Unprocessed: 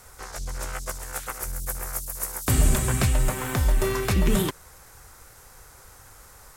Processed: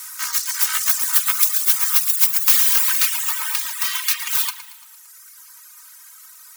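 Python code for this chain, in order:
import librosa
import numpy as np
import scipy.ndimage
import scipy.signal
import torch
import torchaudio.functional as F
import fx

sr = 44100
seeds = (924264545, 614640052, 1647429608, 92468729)

p1 = fx.self_delay(x, sr, depth_ms=0.4)
p2 = fx.peak_eq(p1, sr, hz=8600.0, db=-3.0, octaves=0.58)
p3 = fx.quant_dither(p2, sr, seeds[0], bits=6, dither='none')
p4 = p2 + (p3 * 10.0 ** (-8.5 / 20.0))
p5 = fx.rider(p4, sr, range_db=4, speed_s=2.0)
p6 = fx.tilt_eq(p5, sr, slope=4.5)
p7 = 10.0 ** (-8.0 / 20.0) * np.tanh(p6 / 10.0 ** (-8.0 / 20.0))
p8 = fx.brickwall_highpass(p7, sr, low_hz=900.0)
p9 = p8 + 0.65 * np.pad(p8, (int(3.2 * sr / 1000.0), 0))[:len(p8)]
p10 = p9 + fx.echo_feedback(p9, sr, ms=114, feedback_pct=59, wet_db=-9, dry=0)
p11 = fx.rev_spring(p10, sr, rt60_s=1.0, pass_ms=(49,), chirp_ms=40, drr_db=6.5)
p12 = fx.dereverb_blind(p11, sr, rt60_s=1.1)
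y = p12 * 10.0 ** (1.0 / 20.0)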